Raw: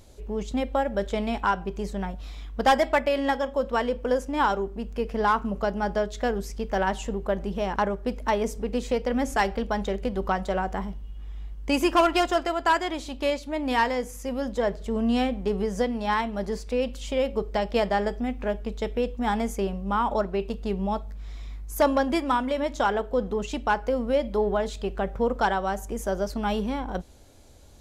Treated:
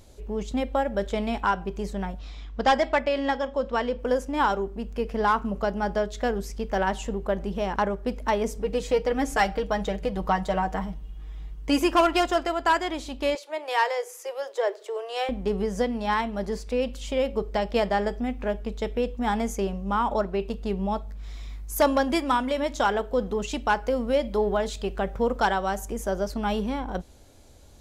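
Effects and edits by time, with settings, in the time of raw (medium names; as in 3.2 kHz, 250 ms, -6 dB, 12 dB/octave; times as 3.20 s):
2.19–3.99 s: Chebyshev low-pass 5.6 kHz
8.62–11.80 s: comb 6.4 ms
13.35–15.29 s: steep high-pass 340 Hz 96 dB/octave
19.47–20.09 s: peaking EQ 6.4 kHz +5.5 dB 0.35 oct
21.23–25.92 s: treble shelf 2.6 kHz +4.5 dB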